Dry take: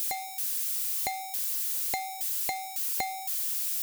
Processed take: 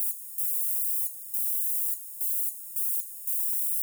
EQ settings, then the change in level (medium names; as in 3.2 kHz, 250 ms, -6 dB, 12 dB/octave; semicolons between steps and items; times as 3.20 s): inverse Chebyshev high-pass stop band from 2.2 kHz, stop band 70 dB; +3.5 dB